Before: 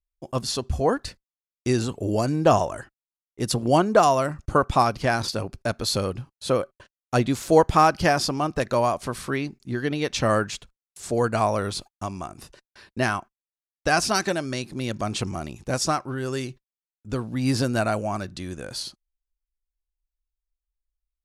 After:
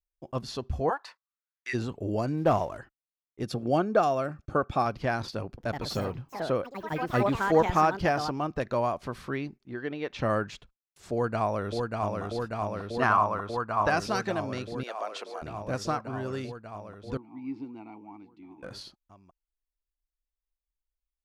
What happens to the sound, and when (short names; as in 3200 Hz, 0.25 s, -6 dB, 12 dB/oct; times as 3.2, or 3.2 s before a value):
0.89–1.73 resonant high-pass 790 Hz -> 1900 Hz
2.37–2.78 CVSD 64 kbps
3.43–4.86 notch comb 970 Hz
5.46–8.89 echoes that change speed 0.116 s, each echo +4 st, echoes 3, each echo -6 dB
9.57–10.19 tone controls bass -9 dB, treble -10 dB
11.13–12.22 echo throw 0.59 s, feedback 85%, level -3 dB
13.02–13.9 bell 1100 Hz +13.5 dB 0.9 oct
14.83–15.42 HPF 450 Hz 24 dB/oct
17.17–18.63 vowel filter u
whole clip: bell 9300 Hz -14.5 dB 1.5 oct; gain -5.5 dB